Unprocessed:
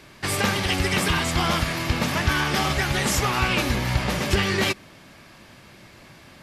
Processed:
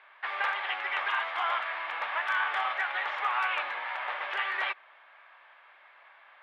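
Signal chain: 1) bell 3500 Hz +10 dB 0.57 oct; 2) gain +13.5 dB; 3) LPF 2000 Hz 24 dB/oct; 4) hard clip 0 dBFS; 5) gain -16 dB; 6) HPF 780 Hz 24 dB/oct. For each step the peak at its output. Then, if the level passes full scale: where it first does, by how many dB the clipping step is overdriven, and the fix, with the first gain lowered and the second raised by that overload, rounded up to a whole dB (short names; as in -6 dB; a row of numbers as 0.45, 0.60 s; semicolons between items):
-4.5, +9.0, +5.0, 0.0, -16.0, -17.0 dBFS; step 2, 5.0 dB; step 2 +8.5 dB, step 5 -11 dB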